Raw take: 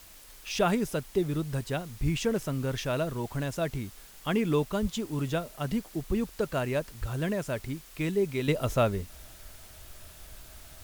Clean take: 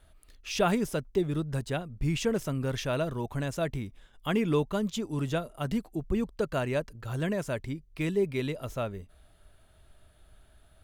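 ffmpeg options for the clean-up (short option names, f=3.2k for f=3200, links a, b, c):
-filter_complex "[0:a]asplit=3[a][b][c];[a]afade=t=out:st=2.03:d=0.02[d];[b]highpass=f=140:w=0.5412,highpass=f=140:w=1.3066,afade=t=in:st=2.03:d=0.02,afade=t=out:st=2.15:d=0.02[e];[c]afade=t=in:st=2.15:d=0.02[f];[d][e][f]amix=inputs=3:normalize=0,asplit=3[g][h][i];[g]afade=t=out:st=4.81:d=0.02[j];[h]highpass=f=140:w=0.5412,highpass=f=140:w=1.3066,afade=t=in:st=4.81:d=0.02,afade=t=out:st=4.93:d=0.02[k];[i]afade=t=in:st=4.93:d=0.02[l];[j][k][l]amix=inputs=3:normalize=0,asplit=3[m][n][o];[m]afade=t=out:st=7:d=0.02[p];[n]highpass=f=140:w=0.5412,highpass=f=140:w=1.3066,afade=t=in:st=7:d=0.02,afade=t=out:st=7.12:d=0.02[q];[o]afade=t=in:st=7.12:d=0.02[r];[p][q][r]amix=inputs=3:normalize=0,afwtdn=0.0025,asetnsamples=n=441:p=0,asendcmd='8.48 volume volume -8dB',volume=0dB"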